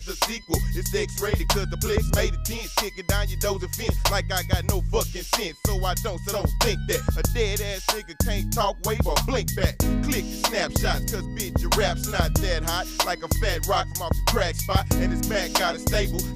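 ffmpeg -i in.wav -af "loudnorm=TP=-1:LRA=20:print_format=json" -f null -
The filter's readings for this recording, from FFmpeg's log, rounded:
"input_i" : "-24.8",
"input_tp" : "-7.0",
"input_lra" : "1.2",
"input_thresh" : "-34.8",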